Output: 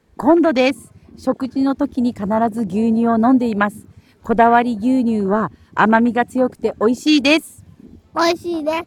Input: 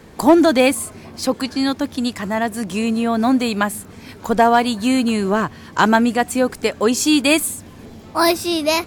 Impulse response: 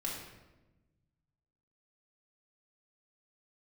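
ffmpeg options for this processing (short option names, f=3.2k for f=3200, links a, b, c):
-af "afwtdn=0.0631,dynaudnorm=f=240:g=9:m=11.5dB,volume=-1dB"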